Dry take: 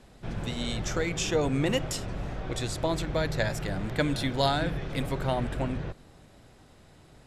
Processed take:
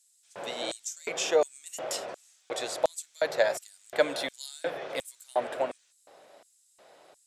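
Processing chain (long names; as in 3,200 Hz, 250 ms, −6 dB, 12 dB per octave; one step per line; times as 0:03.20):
0:00.62–0:01.09: frequency shifter +86 Hz
auto-filter high-pass square 1.4 Hz 570–7,800 Hz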